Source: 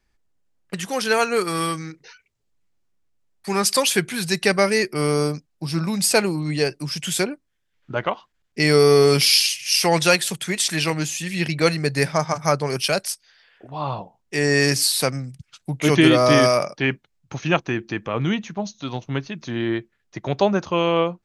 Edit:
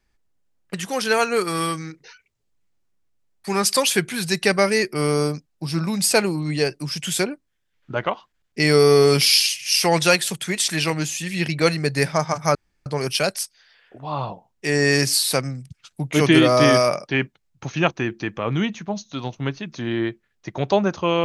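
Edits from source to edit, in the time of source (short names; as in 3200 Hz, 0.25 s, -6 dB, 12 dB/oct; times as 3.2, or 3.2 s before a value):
12.55 insert room tone 0.31 s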